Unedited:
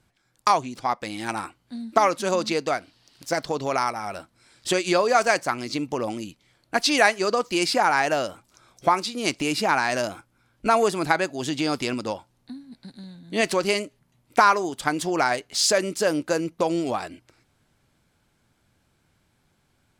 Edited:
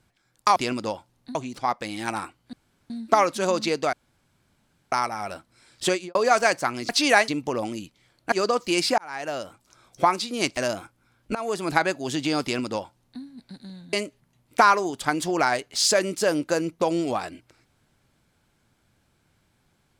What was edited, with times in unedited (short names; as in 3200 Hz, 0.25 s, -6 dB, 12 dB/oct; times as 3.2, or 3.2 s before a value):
1.74 insert room tone 0.37 s
2.77–3.76 room tone
4.74–4.99 studio fade out
6.77–7.16 move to 5.73
7.82–8.9 fade in equal-power
9.41–9.91 cut
10.69–11.08 fade in, from -19 dB
11.77–12.56 copy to 0.56
13.27–13.72 cut